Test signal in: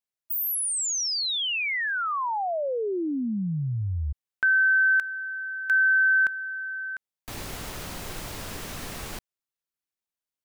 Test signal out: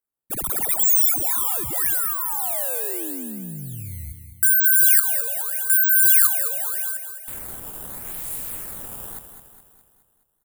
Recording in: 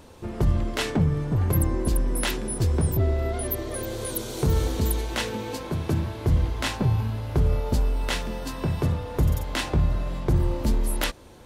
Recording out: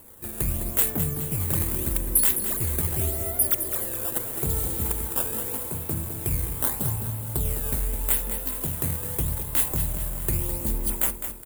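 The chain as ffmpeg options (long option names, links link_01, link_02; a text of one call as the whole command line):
ffmpeg -i in.wav -af "acrusher=samples=12:mix=1:aa=0.000001:lfo=1:lforange=19.2:lforate=0.81,aecho=1:1:209|418|627|836|1045|1254:0.355|0.188|0.0997|0.0528|0.028|0.0148,aexciter=amount=13.6:drive=5:freq=8000,volume=-7dB" out.wav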